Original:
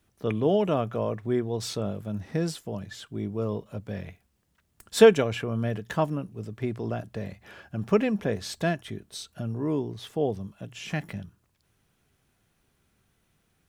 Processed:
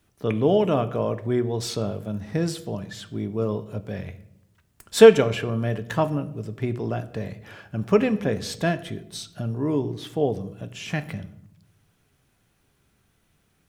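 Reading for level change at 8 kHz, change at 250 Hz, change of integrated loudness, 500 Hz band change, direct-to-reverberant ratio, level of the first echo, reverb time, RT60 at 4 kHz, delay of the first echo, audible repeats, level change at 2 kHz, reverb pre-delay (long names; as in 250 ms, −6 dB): +3.0 dB, +3.0 dB, +4.0 dB, +4.0 dB, 11.0 dB, no echo audible, 0.80 s, 0.55 s, no echo audible, no echo audible, +3.0 dB, 7 ms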